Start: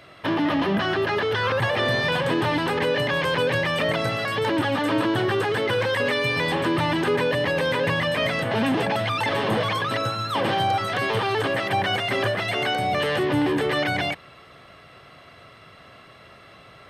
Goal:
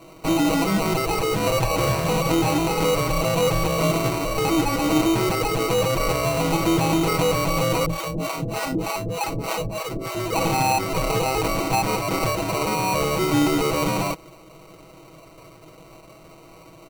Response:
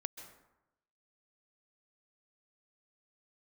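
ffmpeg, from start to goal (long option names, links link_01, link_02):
-filter_complex "[0:a]acrusher=samples=26:mix=1:aa=0.000001,aecho=1:1:6.2:0.72,asettb=1/sr,asplit=3[link_01][link_02][link_03];[link_01]atrim=end=7.864[link_04];[link_02]atrim=start=7.86:end=10.15,asetpts=PTS-STARTPTS,afade=type=in:duration=0.004:curve=qsin,afade=type=out:start_time=2.286:duration=0.004:curve=qsin,acrossover=split=490[link_05][link_06];[link_05]aeval=exprs='val(0)*(1-1/2+1/2*cos(2*PI*3.3*n/s))':channel_layout=same[link_07];[link_06]aeval=exprs='val(0)*(1-1/2-1/2*cos(2*PI*3.3*n/s))':channel_layout=same[link_08];[link_07][link_08]amix=inputs=2:normalize=0[link_09];[link_03]atrim=start=10.146[link_10];[link_04][link_09]acrossfade=duration=0.004:curve1=hsin:curve2=qsin[link_11];[link_11][link_10]acrossfade=duration=0.004:curve1=qsin:curve2=hsin"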